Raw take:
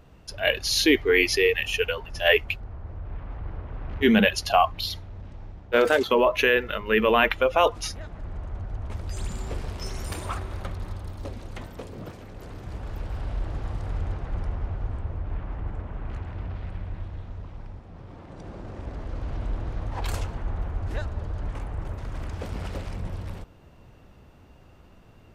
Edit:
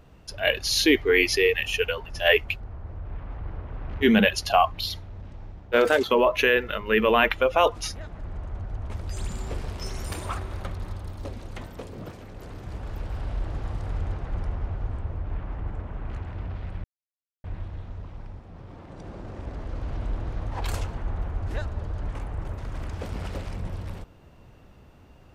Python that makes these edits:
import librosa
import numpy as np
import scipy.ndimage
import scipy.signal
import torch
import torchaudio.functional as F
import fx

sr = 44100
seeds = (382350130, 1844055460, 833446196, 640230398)

y = fx.edit(x, sr, fx.insert_silence(at_s=16.84, length_s=0.6), tone=tone)